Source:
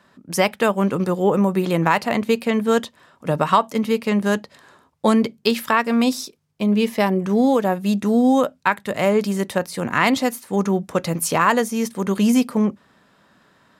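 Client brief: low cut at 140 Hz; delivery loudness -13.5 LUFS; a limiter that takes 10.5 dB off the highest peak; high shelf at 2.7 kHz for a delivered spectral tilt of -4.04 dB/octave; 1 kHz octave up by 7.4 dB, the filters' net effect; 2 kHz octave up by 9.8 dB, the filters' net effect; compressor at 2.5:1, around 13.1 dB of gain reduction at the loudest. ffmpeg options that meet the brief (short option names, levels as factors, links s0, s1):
-af "highpass=140,equalizer=f=1000:t=o:g=6,equalizer=f=2000:t=o:g=7.5,highshelf=f=2700:g=6.5,acompressor=threshold=0.0631:ratio=2.5,volume=4.73,alimiter=limit=0.944:level=0:latency=1"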